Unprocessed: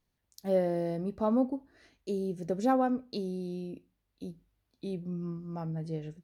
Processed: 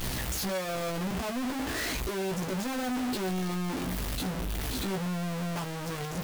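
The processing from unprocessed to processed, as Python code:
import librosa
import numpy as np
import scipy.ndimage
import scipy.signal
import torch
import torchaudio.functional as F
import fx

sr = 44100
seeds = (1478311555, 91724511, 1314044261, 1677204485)

y = np.sign(x) * np.sqrt(np.mean(np.square(x)))
y = fx.doubler(y, sr, ms=16.0, db=-5.5)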